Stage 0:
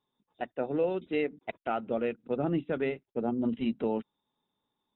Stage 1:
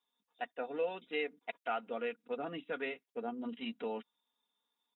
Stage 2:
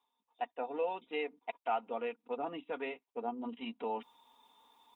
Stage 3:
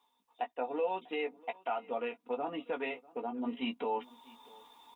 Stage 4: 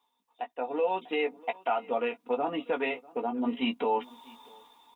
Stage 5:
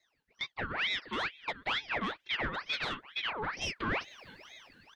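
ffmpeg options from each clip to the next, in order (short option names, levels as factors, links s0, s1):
-af "highpass=f=1400:p=1,aecho=1:1:4.2:0.6"
-af "firequalizer=gain_entry='entry(100,0);entry(160,-7);entry(250,0);entry(590,0);entry(910,9);entry(1500,-7);entry(2400,-1);entry(4700,-7)':delay=0.05:min_phase=1,areverse,acompressor=mode=upward:threshold=0.00398:ratio=2.5,areverse"
-filter_complex "[0:a]alimiter=level_in=2.51:limit=0.0631:level=0:latency=1:release=383,volume=0.398,asplit=2[s0][s1];[s1]adelay=16,volume=0.422[s2];[s0][s2]amix=inputs=2:normalize=0,aecho=1:1:645:0.0668,volume=2.11"
-af "dynaudnorm=f=200:g=7:m=2.51,volume=0.841"
-filter_complex "[0:a]afreqshift=-33,asplit=2[s0][s1];[s1]highpass=f=720:p=1,volume=7.08,asoftclip=type=tanh:threshold=0.15[s2];[s0][s2]amix=inputs=2:normalize=0,lowpass=f=2200:p=1,volume=0.501,aeval=exprs='val(0)*sin(2*PI*1800*n/s+1800*0.65/2.2*sin(2*PI*2.2*n/s))':c=same,volume=0.531"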